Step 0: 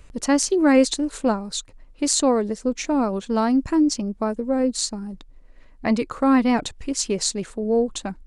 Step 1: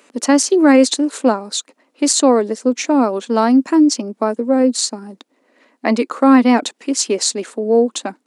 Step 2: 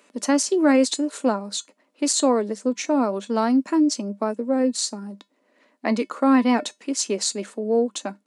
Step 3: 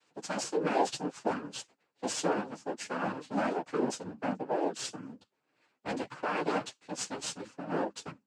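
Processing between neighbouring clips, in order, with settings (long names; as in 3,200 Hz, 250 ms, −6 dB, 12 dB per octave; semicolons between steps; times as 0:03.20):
Chebyshev high-pass filter 240 Hz, order 4; boost into a limiter +8.5 dB; level −1 dB
tuned comb filter 200 Hz, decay 0.17 s, harmonics odd, mix 60%
lower of the sound and its delayed copy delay 5.8 ms; cochlear-implant simulation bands 8; multi-voice chorus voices 4, 0.83 Hz, delay 11 ms, depth 4.5 ms; level −6.5 dB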